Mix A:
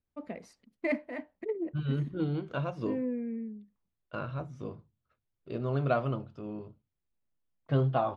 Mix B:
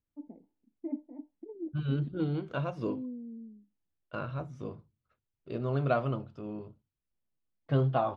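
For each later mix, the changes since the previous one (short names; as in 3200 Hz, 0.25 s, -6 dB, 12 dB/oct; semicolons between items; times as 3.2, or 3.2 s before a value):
first voice: add vocal tract filter u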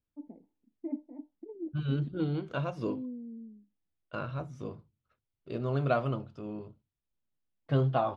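master: add high shelf 5000 Hz +6.5 dB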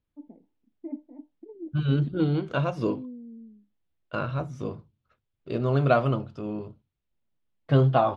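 second voice +7.0 dB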